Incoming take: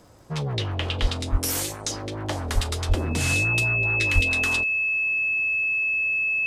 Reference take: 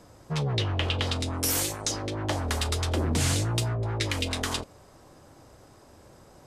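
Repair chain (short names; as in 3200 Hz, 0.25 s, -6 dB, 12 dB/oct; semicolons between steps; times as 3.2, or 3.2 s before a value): de-click; notch 2600 Hz, Q 30; de-plosive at 1.01/1.31/2.54/2.88/4.14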